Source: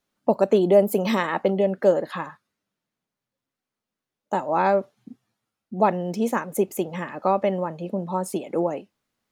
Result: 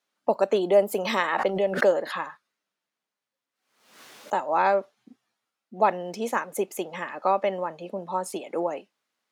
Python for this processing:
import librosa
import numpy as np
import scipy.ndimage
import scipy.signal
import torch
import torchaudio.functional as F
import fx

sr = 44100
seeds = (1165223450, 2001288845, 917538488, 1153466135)

y = fx.weighting(x, sr, curve='A')
y = fx.pre_swell(y, sr, db_per_s=80.0, at=(0.98, 4.39))